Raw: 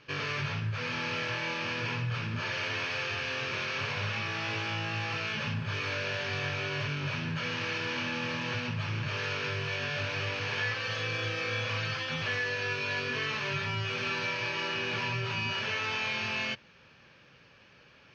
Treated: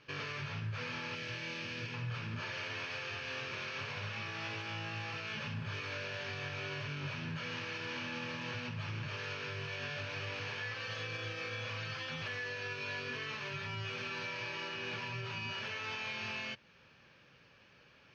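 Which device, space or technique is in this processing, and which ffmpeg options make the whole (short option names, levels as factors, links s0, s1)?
clipper into limiter: -filter_complex "[0:a]asettb=1/sr,asplit=3[s0][s1][s2];[s0]atrim=end=1.154[s3];[s1]atrim=start=1.15:end=1.94,asetpts=PTS-STARTPTS,afade=t=in:d=0.004:c=qsin,afade=t=out:st=0.786:d=0.004:c=qsin,equalizer=f=940:t=o:w=1.5:g=-9.5[s4];[s2]atrim=start=1.936[s5];[s3][s4]acrossfade=d=0.004:c1=hsin:c2=qsin[s6];[s6][s5]acrossfade=d=0.004:c1=qsin:c2=hsin,asoftclip=type=hard:threshold=0.0841,alimiter=level_in=1.33:limit=0.0631:level=0:latency=1:release=222,volume=0.75,volume=0.596"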